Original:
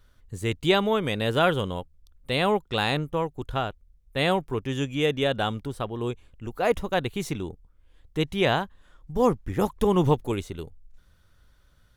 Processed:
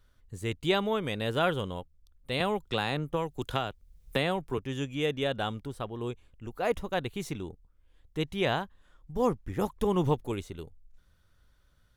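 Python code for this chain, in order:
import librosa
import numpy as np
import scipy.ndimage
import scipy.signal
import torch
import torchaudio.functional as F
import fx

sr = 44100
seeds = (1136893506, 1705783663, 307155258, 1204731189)

y = fx.band_squash(x, sr, depth_pct=100, at=(2.4, 4.58))
y = F.gain(torch.from_numpy(y), -5.5).numpy()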